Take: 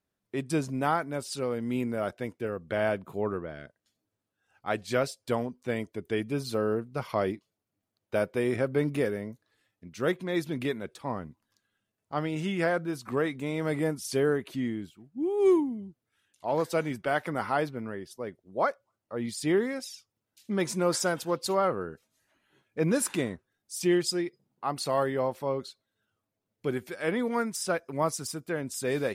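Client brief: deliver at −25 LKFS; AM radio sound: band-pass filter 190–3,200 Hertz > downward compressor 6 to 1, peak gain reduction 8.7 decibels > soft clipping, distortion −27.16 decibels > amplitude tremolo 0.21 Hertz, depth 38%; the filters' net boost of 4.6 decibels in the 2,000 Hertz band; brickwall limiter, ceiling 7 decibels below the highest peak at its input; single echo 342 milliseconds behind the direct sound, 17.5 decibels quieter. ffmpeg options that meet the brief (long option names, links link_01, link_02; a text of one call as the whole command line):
ffmpeg -i in.wav -af "equalizer=frequency=2000:width_type=o:gain=6.5,alimiter=limit=-18.5dB:level=0:latency=1,highpass=190,lowpass=3200,aecho=1:1:342:0.133,acompressor=threshold=-31dB:ratio=6,asoftclip=threshold=-21dB,tremolo=f=0.21:d=0.38,volume=14.5dB" out.wav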